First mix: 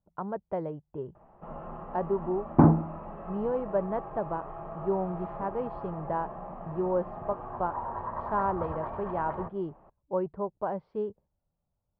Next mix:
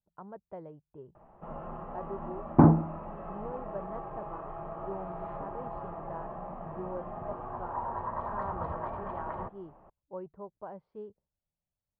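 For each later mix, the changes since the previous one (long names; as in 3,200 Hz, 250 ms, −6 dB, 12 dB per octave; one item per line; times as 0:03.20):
speech −11.5 dB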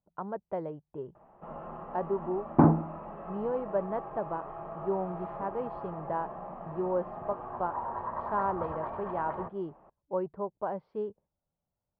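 speech +10.0 dB
master: add low-shelf EQ 110 Hz −9.5 dB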